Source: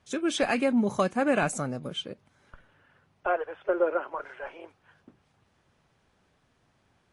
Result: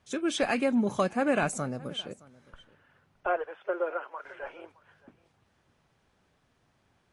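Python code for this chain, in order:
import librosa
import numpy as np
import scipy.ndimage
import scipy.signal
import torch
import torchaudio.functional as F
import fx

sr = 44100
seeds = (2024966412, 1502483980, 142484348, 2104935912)

p1 = fx.highpass(x, sr, hz=fx.line((3.45, 330.0), (4.24, 1400.0)), slope=6, at=(3.45, 4.24), fade=0.02)
p2 = p1 + fx.echo_single(p1, sr, ms=617, db=-22.5, dry=0)
y = F.gain(torch.from_numpy(p2), -1.5).numpy()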